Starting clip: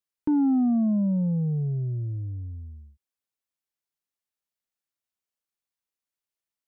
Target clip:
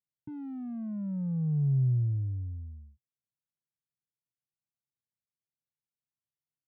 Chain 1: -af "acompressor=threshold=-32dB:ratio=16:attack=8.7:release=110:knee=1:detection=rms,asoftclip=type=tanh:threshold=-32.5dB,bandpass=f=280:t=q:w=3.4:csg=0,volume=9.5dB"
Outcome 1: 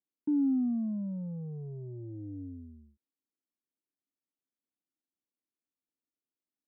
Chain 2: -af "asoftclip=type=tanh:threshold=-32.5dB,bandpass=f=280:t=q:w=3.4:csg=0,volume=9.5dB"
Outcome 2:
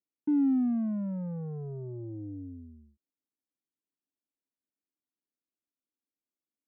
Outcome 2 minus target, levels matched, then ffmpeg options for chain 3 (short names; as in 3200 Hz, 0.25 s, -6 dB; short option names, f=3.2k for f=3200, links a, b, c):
125 Hz band -10.5 dB
-af "asoftclip=type=tanh:threshold=-32.5dB,bandpass=f=130:t=q:w=3.4:csg=0,volume=9.5dB"